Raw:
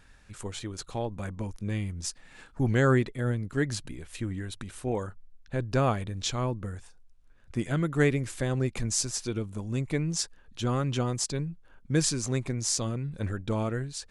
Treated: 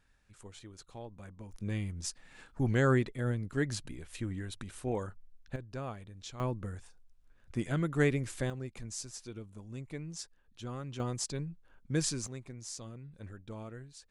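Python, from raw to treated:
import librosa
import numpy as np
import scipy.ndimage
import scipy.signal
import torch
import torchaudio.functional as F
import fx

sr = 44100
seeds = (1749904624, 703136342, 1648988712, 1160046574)

y = fx.gain(x, sr, db=fx.steps((0.0, -13.5), (1.52, -4.0), (5.56, -15.0), (6.4, -4.0), (8.5, -13.0), (11.0, -6.0), (12.27, -15.0)))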